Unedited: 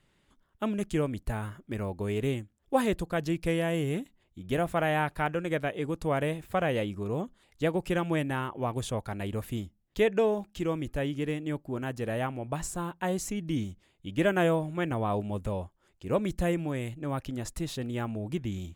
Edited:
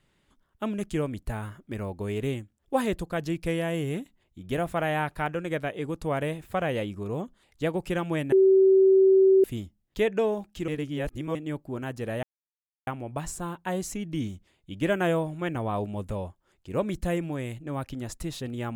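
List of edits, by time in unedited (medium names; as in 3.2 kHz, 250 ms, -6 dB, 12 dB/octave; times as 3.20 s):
8.32–9.44 s: bleep 383 Hz -14.5 dBFS
10.68–11.35 s: reverse
12.23 s: insert silence 0.64 s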